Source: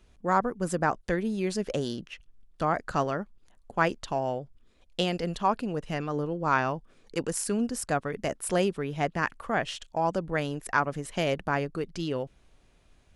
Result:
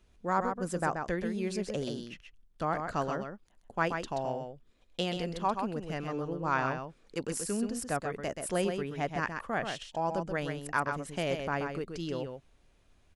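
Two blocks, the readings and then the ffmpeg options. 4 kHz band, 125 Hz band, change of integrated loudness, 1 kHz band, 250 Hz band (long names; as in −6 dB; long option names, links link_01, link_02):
−4.0 dB, −4.0 dB, −4.0 dB, −4.0 dB, −4.0 dB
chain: -af "aecho=1:1:130:0.501,volume=-5dB"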